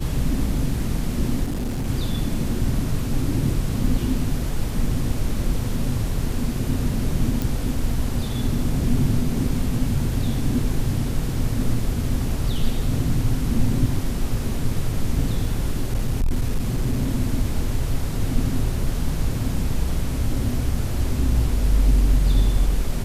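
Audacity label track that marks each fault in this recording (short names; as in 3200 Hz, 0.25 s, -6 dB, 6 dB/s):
1.430000	1.880000	clipped -22 dBFS
7.420000	7.420000	pop
15.930000	17.020000	clipped -16 dBFS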